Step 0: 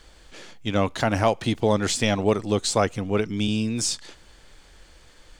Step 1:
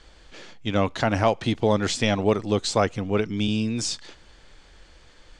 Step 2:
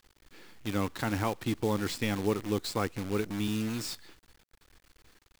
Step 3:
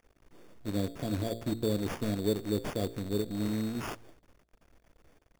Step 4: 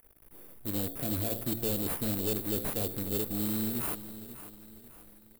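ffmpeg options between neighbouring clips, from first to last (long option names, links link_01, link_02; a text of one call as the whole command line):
ffmpeg -i in.wav -af "lowpass=6400" out.wav
ffmpeg -i in.wav -af "equalizer=frequency=315:width_type=o:width=0.33:gain=4,equalizer=frequency=630:width_type=o:width=0.33:gain=-12,equalizer=frequency=3150:width_type=o:width=0.33:gain=-5,equalizer=frequency=6300:width_type=o:width=0.33:gain=-9,acrusher=bits=6:dc=4:mix=0:aa=0.000001,volume=-7.5dB" out.wav
ffmpeg -i in.wav -af "bandreject=frequency=57.01:width_type=h:width=4,bandreject=frequency=114.02:width_type=h:width=4,bandreject=frequency=171.03:width_type=h:width=4,bandreject=frequency=228.04:width_type=h:width=4,bandreject=frequency=285.05:width_type=h:width=4,bandreject=frequency=342.06:width_type=h:width=4,bandreject=frequency=399.07:width_type=h:width=4,bandreject=frequency=456.08:width_type=h:width=4,bandreject=frequency=513.09:width_type=h:width=4,bandreject=frequency=570.1:width_type=h:width=4,bandreject=frequency=627.11:width_type=h:width=4,bandreject=frequency=684.12:width_type=h:width=4,bandreject=frequency=741.13:width_type=h:width=4,bandreject=frequency=798.14:width_type=h:width=4,bandreject=frequency=855.15:width_type=h:width=4,bandreject=frequency=912.16:width_type=h:width=4,bandreject=frequency=969.17:width_type=h:width=4,bandreject=frequency=1026.18:width_type=h:width=4,bandreject=frequency=1083.19:width_type=h:width=4,bandreject=frequency=1140.2:width_type=h:width=4,bandreject=frequency=1197.21:width_type=h:width=4,bandreject=frequency=1254.22:width_type=h:width=4,bandreject=frequency=1311.23:width_type=h:width=4,bandreject=frequency=1368.24:width_type=h:width=4,bandreject=frequency=1425.25:width_type=h:width=4,bandreject=frequency=1482.26:width_type=h:width=4,bandreject=frequency=1539.27:width_type=h:width=4,bandreject=frequency=1596.28:width_type=h:width=4,bandreject=frequency=1653.29:width_type=h:width=4,bandreject=frequency=1710.3:width_type=h:width=4,bandreject=frequency=1767.31:width_type=h:width=4,bandreject=frequency=1824.32:width_type=h:width=4,bandreject=frequency=1881.33:width_type=h:width=4,bandreject=frequency=1938.34:width_type=h:width=4,bandreject=frequency=1995.35:width_type=h:width=4,bandreject=frequency=2052.36:width_type=h:width=4,bandreject=frequency=2109.37:width_type=h:width=4,bandreject=frequency=2166.38:width_type=h:width=4,afftfilt=real='re*(1-between(b*sr/4096,720,3300))':imag='im*(1-between(b*sr/4096,720,3300))':win_size=4096:overlap=0.75,acrusher=samples=11:mix=1:aa=0.000001" out.wav
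ffmpeg -i in.wav -af "aexciter=amount=9.7:drive=6.6:freq=9400,asoftclip=type=hard:threshold=-27dB,aecho=1:1:546|1092|1638|2184:0.211|0.0888|0.0373|0.0157" out.wav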